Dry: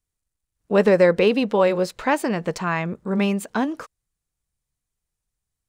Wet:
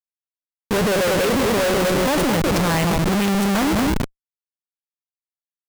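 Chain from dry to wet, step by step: feedback echo behind a low-pass 201 ms, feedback 38%, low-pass 1.1 kHz, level -6 dB; Schmitt trigger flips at -30.5 dBFS; trim +3.5 dB

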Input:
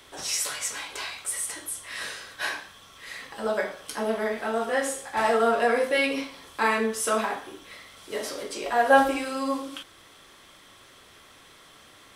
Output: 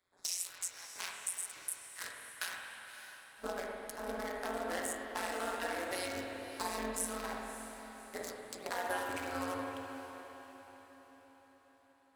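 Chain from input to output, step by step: local Wiener filter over 15 samples; pre-emphasis filter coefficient 0.9; gate -50 dBFS, range -21 dB; 5.95–6.79 s: high-order bell 2 kHz -11.5 dB; compression 6:1, threshold -47 dBFS, peak gain reduction 19.5 dB; AM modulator 180 Hz, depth 95%; echo that smears into a reverb 588 ms, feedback 47%, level -12 dB; spring tank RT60 3 s, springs 49/59 ms, chirp 60 ms, DRR 0.5 dB; trim +14 dB

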